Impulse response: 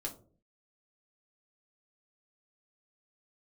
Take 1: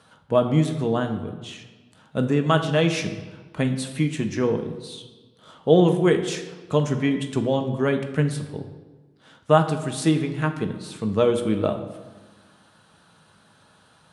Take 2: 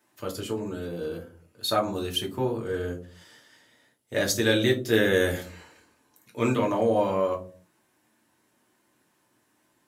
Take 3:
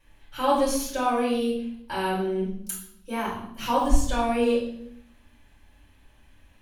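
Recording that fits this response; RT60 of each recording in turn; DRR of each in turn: 2; 1.3, 0.45, 0.75 s; 5.0, -0.5, -7.5 dB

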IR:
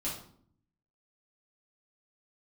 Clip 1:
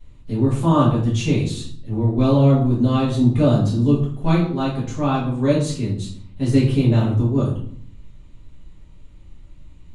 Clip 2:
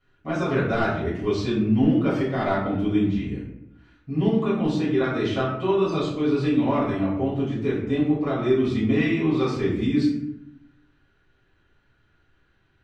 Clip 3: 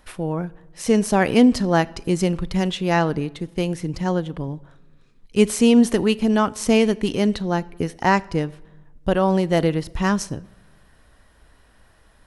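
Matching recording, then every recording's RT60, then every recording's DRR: 1; 0.60, 0.80, 1.3 s; -8.0, -10.5, 20.5 dB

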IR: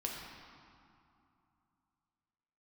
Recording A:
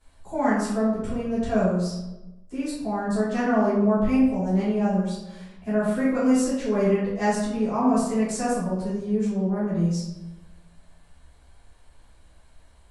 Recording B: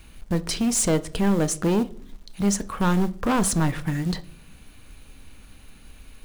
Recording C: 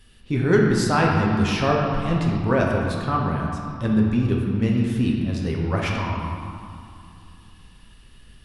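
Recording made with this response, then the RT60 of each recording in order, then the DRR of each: C; 1.0, 0.55, 2.7 s; -13.0, 12.5, -2.0 dB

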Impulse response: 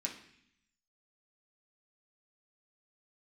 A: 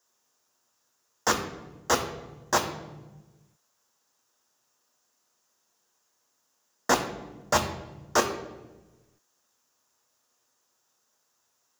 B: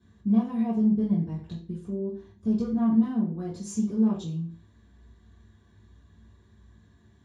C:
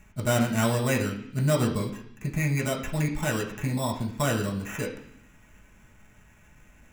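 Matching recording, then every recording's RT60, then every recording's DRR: C; 1.2, 0.45, 0.65 s; 4.0, -8.5, -2.0 dB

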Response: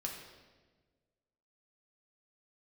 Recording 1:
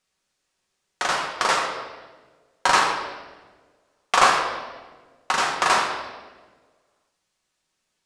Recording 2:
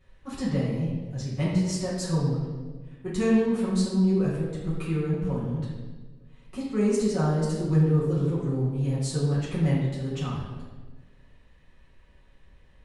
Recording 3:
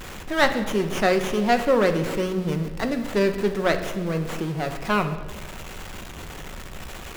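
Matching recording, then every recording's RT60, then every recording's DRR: 1; 1.4, 1.4, 1.4 s; -1.0, -10.5, 6.0 dB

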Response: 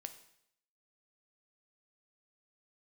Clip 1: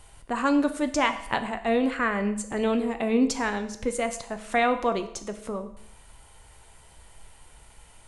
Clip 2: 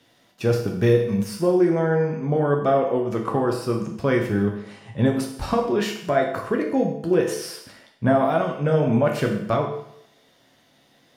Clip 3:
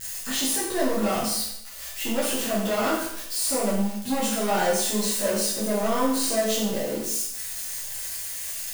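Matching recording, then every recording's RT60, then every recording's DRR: 1; 0.75, 0.75, 0.75 s; 7.5, 0.5, -9.5 dB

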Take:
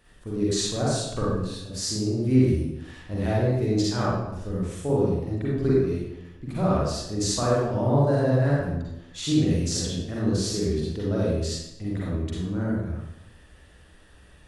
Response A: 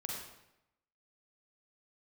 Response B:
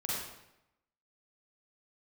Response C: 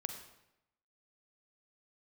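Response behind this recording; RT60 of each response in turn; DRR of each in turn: B; 0.85, 0.85, 0.85 s; -2.5, -7.0, 5.5 dB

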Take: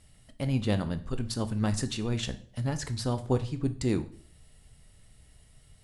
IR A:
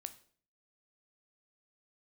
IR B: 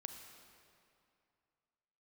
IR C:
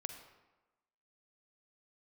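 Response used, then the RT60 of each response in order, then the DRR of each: A; 0.50, 2.5, 1.1 s; 10.0, 5.0, 6.5 dB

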